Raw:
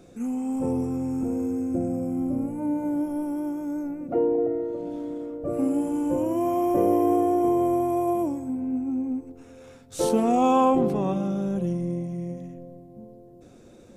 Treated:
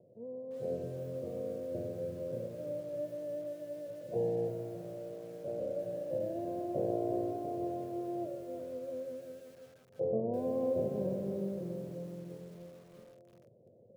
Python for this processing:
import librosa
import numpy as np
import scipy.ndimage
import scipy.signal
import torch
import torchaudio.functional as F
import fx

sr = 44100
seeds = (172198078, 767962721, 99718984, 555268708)

y = fx.lower_of_two(x, sr, delay_ms=1.8)
y = scipy.signal.sosfilt(scipy.signal.ellip(3, 1.0, 40, [110.0, 610.0], 'bandpass', fs=sr, output='sos'), y)
y = fx.echo_crushed(y, sr, ms=342, feedback_pct=35, bits=8, wet_db=-8.5)
y = F.gain(torch.from_numpy(y), -7.0).numpy()